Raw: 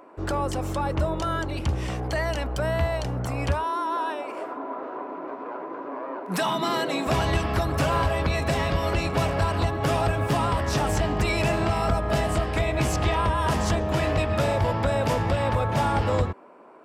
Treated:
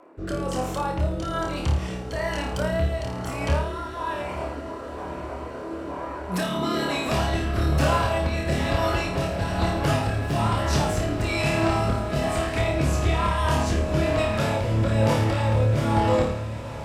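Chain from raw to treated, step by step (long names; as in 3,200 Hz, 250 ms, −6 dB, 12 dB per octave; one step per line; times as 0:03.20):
flutter between parallel walls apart 4.7 metres, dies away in 0.55 s
rotating-speaker cabinet horn 1.1 Hz
feedback delay with all-pass diffusion 936 ms, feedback 78%, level −14.5 dB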